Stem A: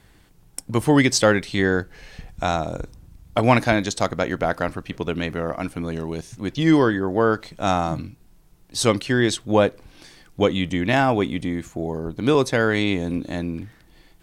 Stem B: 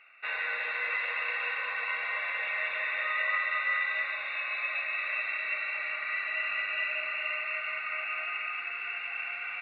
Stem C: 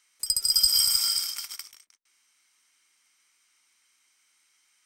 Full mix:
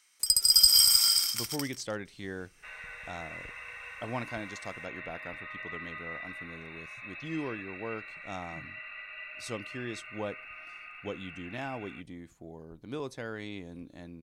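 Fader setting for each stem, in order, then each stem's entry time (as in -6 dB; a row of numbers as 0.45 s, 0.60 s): -19.5 dB, -12.0 dB, +1.5 dB; 0.65 s, 2.40 s, 0.00 s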